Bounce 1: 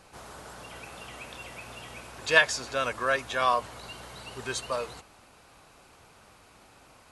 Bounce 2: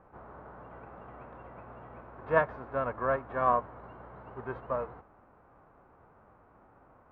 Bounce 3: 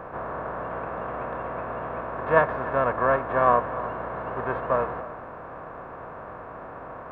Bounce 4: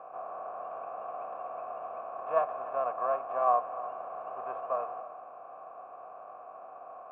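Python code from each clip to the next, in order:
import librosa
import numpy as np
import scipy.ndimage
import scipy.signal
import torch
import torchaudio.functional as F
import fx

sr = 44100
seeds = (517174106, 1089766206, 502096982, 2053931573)

y1 = fx.envelope_flatten(x, sr, power=0.6)
y1 = scipy.signal.sosfilt(scipy.signal.butter(4, 1300.0, 'lowpass', fs=sr, output='sos'), y1)
y2 = fx.bin_compress(y1, sr, power=0.6)
y2 = y2 + 10.0 ** (-16.5 / 20.0) * np.pad(y2, (int(296 * sr / 1000.0), 0))[:len(y2)]
y2 = F.gain(torch.from_numpy(y2), 4.5).numpy()
y3 = fx.vowel_filter(y2, sr, vowel='a')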